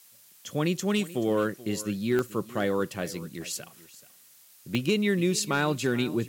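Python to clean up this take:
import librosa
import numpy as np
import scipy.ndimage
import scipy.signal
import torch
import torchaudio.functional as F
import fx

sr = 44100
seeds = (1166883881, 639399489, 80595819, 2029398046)

y = fx.fix_declip(x, sr, threshold_db=-16.0)
y = fx.fix_declick_ar(y, sr, threshold=10.0)
y = fx.noise_reduce(y, sr, print_start_s=4.08, print_end_s=4.58, reduce_db=18.0)
y = fx.fix_echo_inverse(y, sr, delay_ms=431, level_db=-18.0)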